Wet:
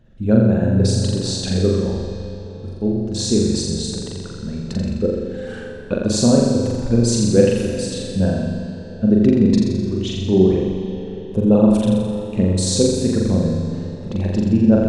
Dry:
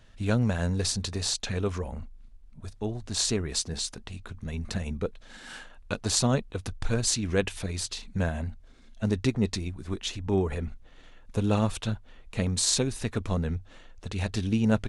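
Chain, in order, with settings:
spectral envelope exaggerated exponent 1.5
hollow resonant body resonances 220/350/510 Hz, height 12 dB, ringing for 30 ms
on a send: flutter between parallel walls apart 7.3 metres, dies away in 1.1 s
on the sum: comb and all-pass reverb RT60 4.6 s, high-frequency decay 0.75×, pre-delay 45 ms, DRR 6.5 dB

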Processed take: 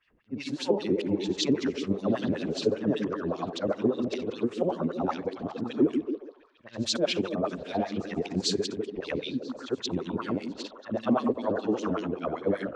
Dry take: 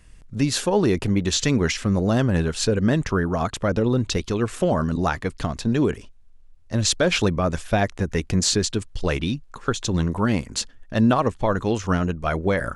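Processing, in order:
every overlapping window played backwards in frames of 185 ms
low-pass that shuts in the quiet parts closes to 2,600 Hz, open at −18.5 dBFS
dynamic equaliser 1,600 Hz, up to −6 dB, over −44 dBFS, Q 1.1
auto-filter band-pass sine 5.1 Hz 270–4,100 Hz
echo through a band-pass that steps 141 ms, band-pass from 240 Hz, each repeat 0.7 octaves, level −5 dB
level +5 dB

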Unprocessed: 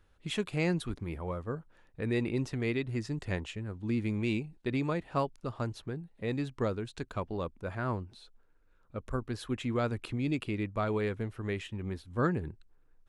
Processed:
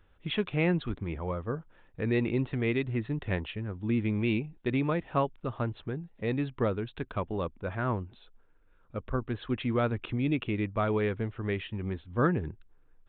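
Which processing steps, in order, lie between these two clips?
downsampling to 8,000 Hz
level +3 dB

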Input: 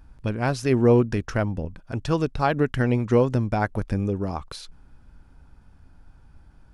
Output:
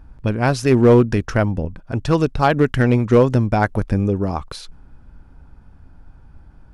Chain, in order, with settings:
hard clipping −12 dBFS, distortion −20 dB
one half of a high-frequency compander decoder only
level +6.5 dB

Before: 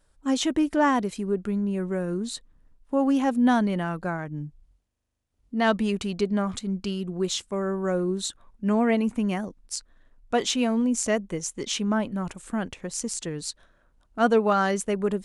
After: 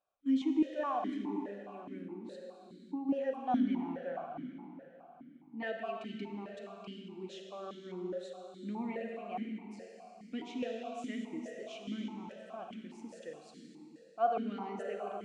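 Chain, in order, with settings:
convolution reverb RT60 3.7 s, pre-delay 31 ms, DRR 1.5 dB
0:02.02–0:03.09: downward compressor, threshold −23 dBFS, peak gain reduction 6.5 dB
formant filter that steps through the vowels 4.8 Hz
level −4 dB

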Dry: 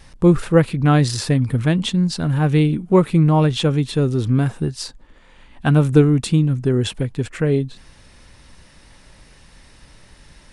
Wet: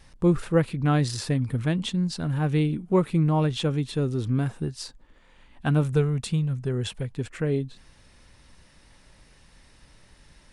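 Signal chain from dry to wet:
0:05.83–0:07.15: parametric band 300 Hz −13.5 dB 0.35 octaves
level −7.5 dB

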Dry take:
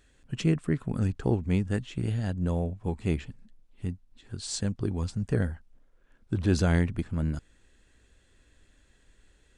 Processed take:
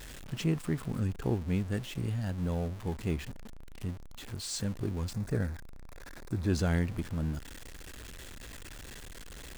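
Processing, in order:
converter with a step at zero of −34.5 dBFS
0:05.13–0:06.50: parametric band 3,000 Hz −11.5 dB 0.25 octaves
level −5.5 dB

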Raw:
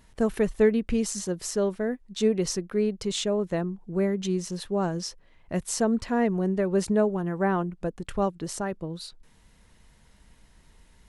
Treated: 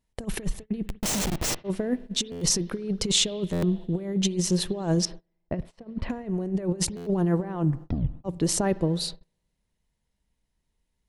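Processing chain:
compressor whose output falls as the input rises −30 dBFS, ratio −0.5
0:00.86–0:01.64: comparator with hysteresis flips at −30.5 dBFS
0:05.05–0:06.10: high-frequency loss of the air 460 metres
0:07.60: tape stop 0.64 s
spring reverb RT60 2 s, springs 52 ms, chirp 55 ms, DRR 17.5 dB
noise gate −40 dBFS, range −30 dB
parametric band 1,400 Hz −6 dB 1 octave
buffer that repeats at 0:02.31/0:03.52/0:06.96, samples 512, times 8
level +5 dB

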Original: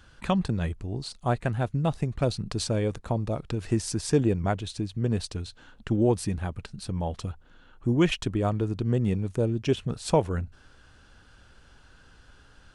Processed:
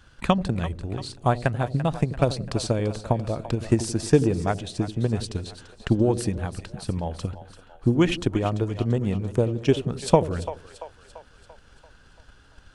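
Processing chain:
transient designer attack +8 dB, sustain +3 dB
echo with a time of its own for lows and highs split 540 Hz, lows 85 ms, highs 340 ms, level −12.5 dB
level −1 dB

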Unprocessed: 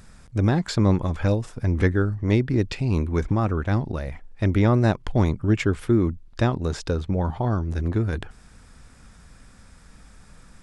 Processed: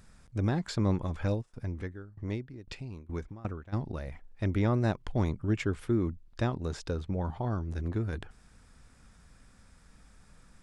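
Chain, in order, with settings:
0:01.41–0:03.72: tremolo with a ramp in dB decaying 1.3 Hz → 3.4 Hz, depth 21 dB
level −8.5 dB

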